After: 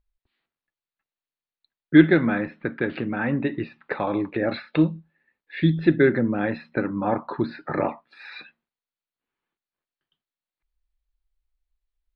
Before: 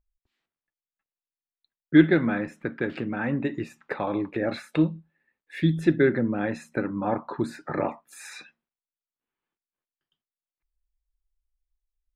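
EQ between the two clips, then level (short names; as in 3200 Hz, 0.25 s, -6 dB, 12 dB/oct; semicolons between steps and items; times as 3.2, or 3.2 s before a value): elliptic low-pass 4400 Hz, stop band 40 dB; +3.5 dB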